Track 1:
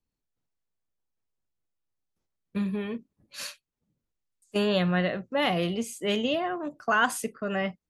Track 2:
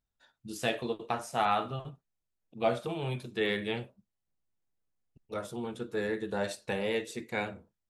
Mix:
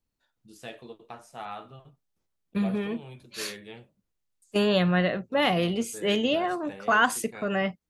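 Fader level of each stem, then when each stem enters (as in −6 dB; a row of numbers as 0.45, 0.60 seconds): +2.0, −10.5 decibels; 0.00, 0.00 seconds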